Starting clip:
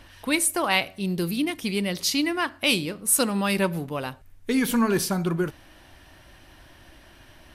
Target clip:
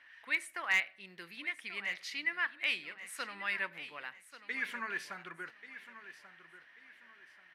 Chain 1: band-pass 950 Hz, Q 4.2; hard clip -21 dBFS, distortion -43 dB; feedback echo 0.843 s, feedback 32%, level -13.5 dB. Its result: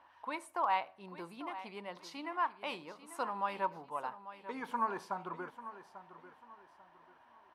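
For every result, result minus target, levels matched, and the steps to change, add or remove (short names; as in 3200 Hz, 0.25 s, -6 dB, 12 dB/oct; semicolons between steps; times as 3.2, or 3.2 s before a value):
1000 Hz band +13.5 dB; echo 0.294 s early
change: band-pass 1900 Hz, Q 4.2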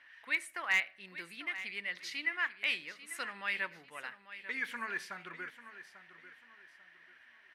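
echo 0.294 s early
change: feedback echo 1.137 s, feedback 32%, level -13.5 dB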